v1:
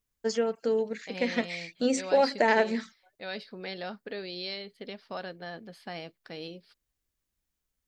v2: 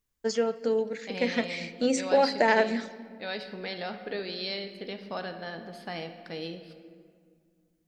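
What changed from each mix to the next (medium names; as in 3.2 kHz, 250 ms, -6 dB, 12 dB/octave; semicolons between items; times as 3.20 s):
reverb: on, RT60 2.1 s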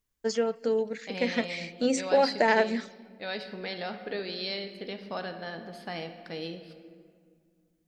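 first voice: send -7.5 dB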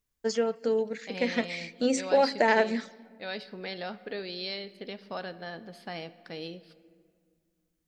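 second voice: send -9.0 dB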